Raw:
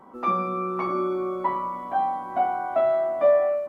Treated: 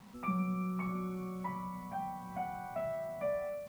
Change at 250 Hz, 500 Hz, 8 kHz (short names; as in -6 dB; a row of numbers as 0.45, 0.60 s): -4.5 dB, -16.5 dB, n/a